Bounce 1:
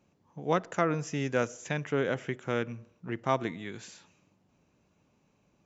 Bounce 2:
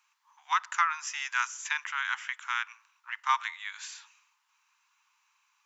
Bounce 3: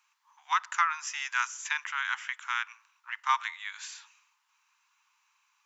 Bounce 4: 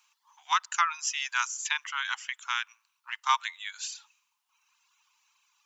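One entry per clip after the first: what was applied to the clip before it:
steep high-pass 930 Hz 72 dB/octave; trim +6.5 dB
no audible change
reverb removal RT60 1.1 s; FFT filter 480 Hz 0 dB, 1.9 kHz -6 dB, 3.1 kHz +2 dB; trim +5 dB

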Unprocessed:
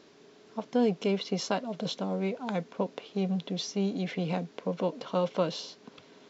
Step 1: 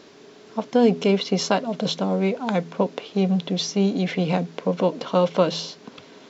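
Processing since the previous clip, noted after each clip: de-hum 82.77 Hz, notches 5; trim +9 dB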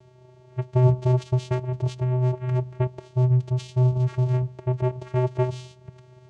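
vocoder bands 4, square 126 Hz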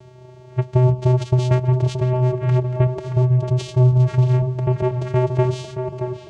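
compression 2.5:1, threshold -22 dBFS, peak gain reduction 7 dB; tape echo 626 ms, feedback 62%, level -5 dB, low-pass 1.5 kHz; trim +8.5 dB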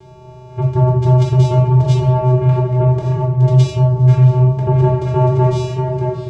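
saturation -11 dBFS, distortion -16 dB; simulated room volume 690 m³, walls furnished, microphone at 3.9 m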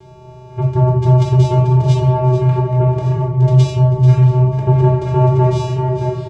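delay 439 ms -11.5 dB

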